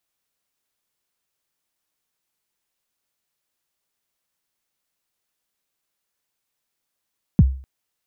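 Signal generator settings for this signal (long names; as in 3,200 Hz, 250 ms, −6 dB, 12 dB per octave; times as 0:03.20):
synth kick length 0.25 s, from 230 Hz, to 66 Hz, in 36 ms, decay 0.42 s, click off, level −5.5 dB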